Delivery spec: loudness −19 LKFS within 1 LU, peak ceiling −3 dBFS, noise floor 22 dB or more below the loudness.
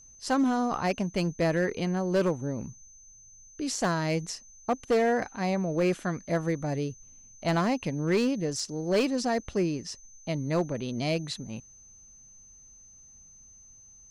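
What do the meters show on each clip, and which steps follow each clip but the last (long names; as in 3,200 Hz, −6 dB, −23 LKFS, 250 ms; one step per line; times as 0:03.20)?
share of clipped samples 1.3%; peaks flattened at −19.5 dBFS; interfering tone 6,200 Hz; level of the tone −51 dBFS; integrated loudness −29.0 LKFS; sample peak −19.5 dBFS; target loudness −19.0 LKFS
→ clipped peaks rebuilt −19.5 dBFS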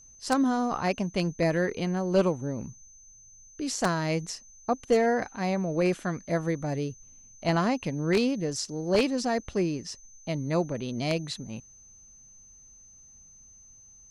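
share of clipped samples 0.0%; interfering tone 6,200 Hz; level of the tone −51 dBFS
→ notch filter 6,200 Hz, Q 30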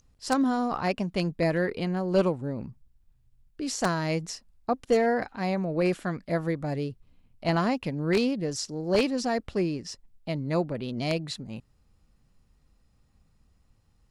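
interfering tone none found; integrated loudness −28.5 LKFS; sample peak −10.5 dBFS; target loudness −19.0 LKFS
→ level +9.5 dB
brickwall limiter −3 dBFS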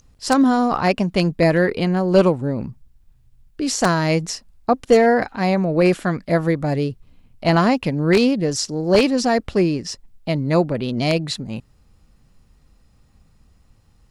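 integrated loudness −19.0 LKFS; sample peak −3.0 dBFS; background noise floor −57 dBFS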